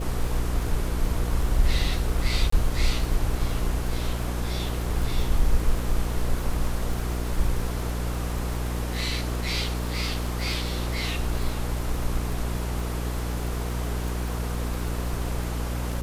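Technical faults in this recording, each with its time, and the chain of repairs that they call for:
crackle 43/s -30 dBFS
hum 60 Hz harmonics 8 -29 dBFS
2.5–2.52 gap 24 ms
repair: de-click; de-hum 60 Hz, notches 8; interpolate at 2.5, 24 ms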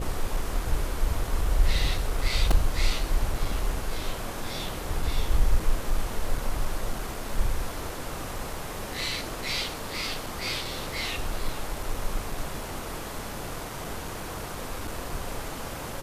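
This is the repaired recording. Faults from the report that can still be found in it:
none

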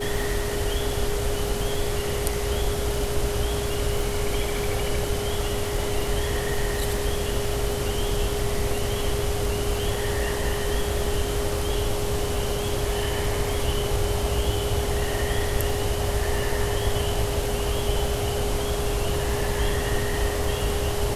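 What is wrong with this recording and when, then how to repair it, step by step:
crackle 41/s -32 dBFS
tone 410 Hz -29 dBFS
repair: de-click; notch 410 Hz, Q 30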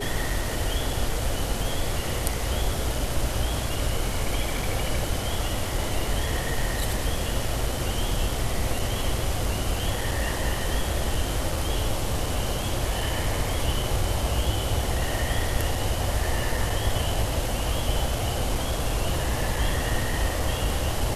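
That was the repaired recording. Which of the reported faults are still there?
none

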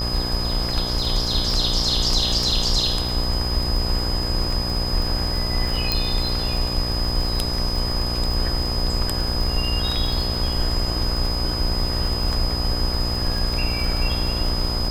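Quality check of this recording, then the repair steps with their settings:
buzz 60 Hz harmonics 21 -27 dBFS
crackle 37/s -25 dBFS
tone 5000 Hz -26 dBFS
5.92 pop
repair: de-click; de-hum 60 Hz, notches 21; notch 5000 Hz, Q 30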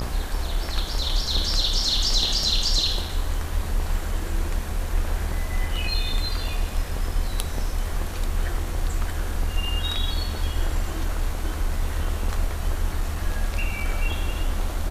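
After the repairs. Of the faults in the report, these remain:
5.92 pop

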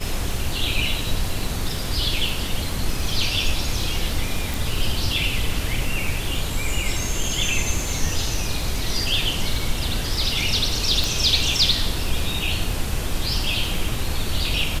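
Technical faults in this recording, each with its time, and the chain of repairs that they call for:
crackle 34/s -28 dBFS
4.54 pop
11.04 pop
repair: de-click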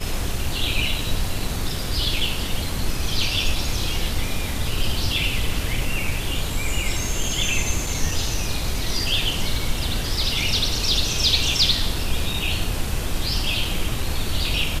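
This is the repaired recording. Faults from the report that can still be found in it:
none

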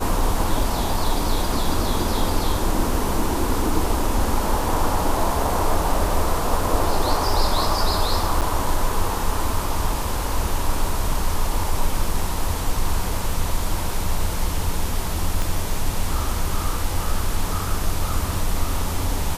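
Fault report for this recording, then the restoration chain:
8.41–8.42 gap 7.7 ms
15.42 pop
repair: de-click; interpolate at 8.41, 7.7 ms

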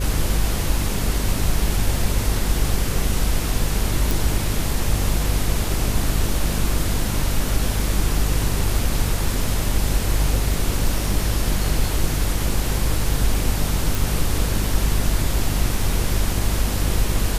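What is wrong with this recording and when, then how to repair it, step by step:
buzz 50 Hz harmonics 10 -24 dBFS
4.11 pop
13.95 pop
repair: de-click; de-hum 50 Hz, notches 10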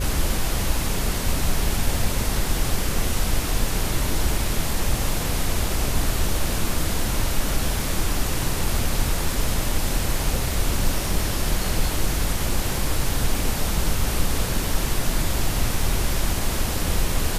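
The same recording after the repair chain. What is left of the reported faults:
none

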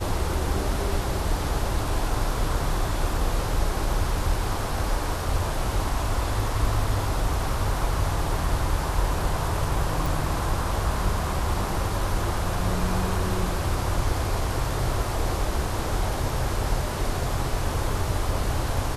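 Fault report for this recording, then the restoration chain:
10.06 pop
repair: de-click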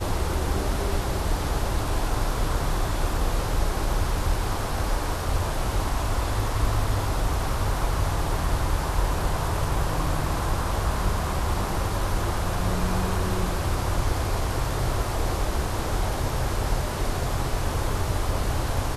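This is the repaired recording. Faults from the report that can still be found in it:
none

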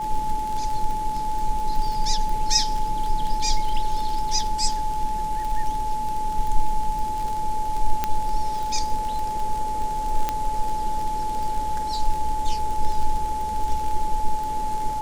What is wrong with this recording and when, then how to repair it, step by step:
crackle 36/s -26 dBFS
tone 860 Hz -25 dBFS
8.04 pop -8 dBFS
10.29 pop -9 dBFS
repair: de-click; notch 860 Hz, Q 30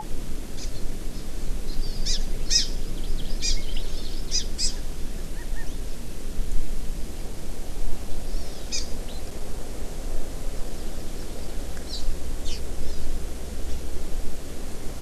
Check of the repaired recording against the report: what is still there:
none

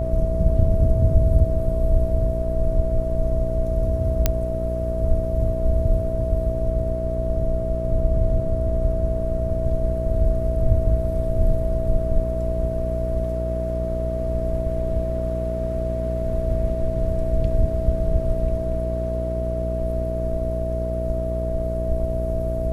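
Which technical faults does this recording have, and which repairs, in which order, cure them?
buzz 60 Hz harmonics 10 -26 dBFS
tone 650 Hz -26 dBFS
4.26 pop -3 dBFS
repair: de-click; de-hum 60 Hz, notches 10; notch 650 Hz, Q 30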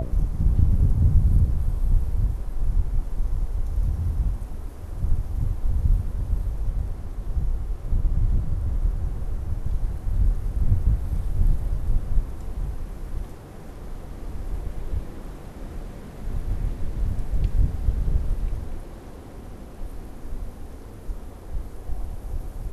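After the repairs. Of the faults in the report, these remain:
none

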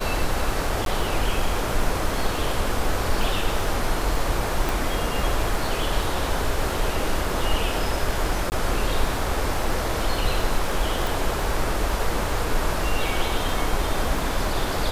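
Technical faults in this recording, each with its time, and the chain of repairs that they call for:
crackle 25/s -28 dBFS
0.85–0.86 gap 12 ms
4.69 pop
8.5–8.52 gap 19 ms
11.07 pop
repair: de-click; interpolate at 0.85, 12 ms; interpolate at 8.5, 19 ms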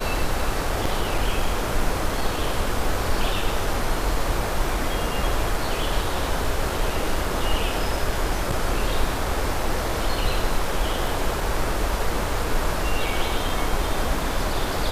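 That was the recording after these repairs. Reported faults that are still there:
4.69 pop
11.07 pop

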